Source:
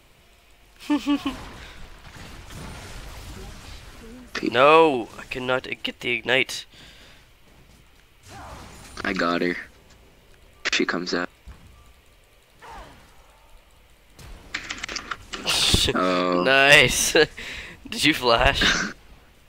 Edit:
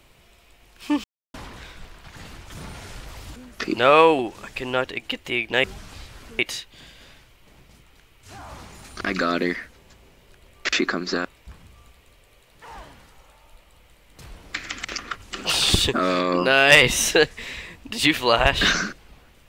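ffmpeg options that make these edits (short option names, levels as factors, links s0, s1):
-filter_complex "[0:a]asplit=6[s0][s1][s2][s3][s4][s5];[s0]atrim=end=1.04,asetpts=PTS-STARTPTS,afade=t=out:st=1.036:d=0.004:c=hsin[s6];[s1]atrim=start=1.04:end=1.34,asetpts=PTS-STARTPTS,volume=0[s7];[s2]atrim=start=1.34:end=3.362,asetpts=PTS-STARTPTS,afade=t=in:d=0.004:c=hsin[s8];[s3]atrim=start=4.108:end=6.392[s9];[s4]atrim=start=3.358:end=4.112[s10];[s5]atrim=start=6.388[s11];[s6][s7][s8]concat=n=3:v=0:a=1[s12];[s12][s9]acrossfade=d=0.004:c1=hsin:c2=hsin[s13];[s13][s10]acrossfade=d=0.004:c1=hsin:c2=hsin[s14];[s14][s11]acrossfade=d=0.004:c1=hsin:c2=hsin"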